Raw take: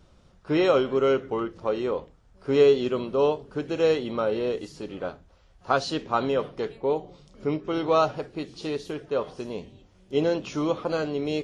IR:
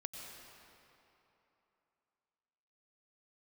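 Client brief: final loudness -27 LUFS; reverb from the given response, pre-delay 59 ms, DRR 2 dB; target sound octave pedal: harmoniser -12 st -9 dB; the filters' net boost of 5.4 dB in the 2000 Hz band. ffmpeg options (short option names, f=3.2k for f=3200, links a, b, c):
-filter_complex "[0:a]equalizer=f=2k:t=o:g=7.5,asplit=2[a][b];[1:a]atrim=start_sample=2205,adelay=59[c];[b][c]afir=irnorm=-1:irlink=0,volume=0dB[d];[a][d]amix=inputs=2:normalize=0,asplit=2[e][f];[f]asetrate=22050,aresample=44100,atempo=2,volume=-9dB[g];[e][g]amix=inputs=2:normalize=0,volume=-4dB"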